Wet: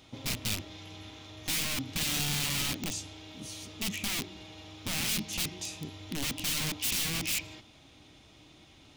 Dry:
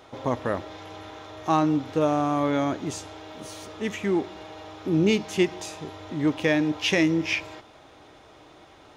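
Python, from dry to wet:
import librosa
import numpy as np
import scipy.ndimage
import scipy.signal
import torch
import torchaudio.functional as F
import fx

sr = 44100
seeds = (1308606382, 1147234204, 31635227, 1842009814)

y = (np.mod(10.0 ** (24.0 / 20.0) * x + 1.0, 2.0) - 1.0) / 10.0 ** (24.0 / 20.0)
y = fx.band_shelf(y, sr, hz=810.0, db=-12.5, octaves=2.6)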